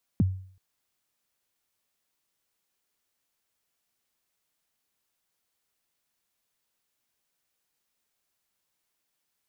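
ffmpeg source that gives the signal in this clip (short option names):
-f lavfi -i "aevalsrc='0.158*pow(10,-3*t/0.52)*sin(2*PI*(270*0.025/log(94/270)*(exp(log(94/270)*min(t,0.025)/0.025)-1)+94*max(t-0.025,0)))':d=0.38:s=44100"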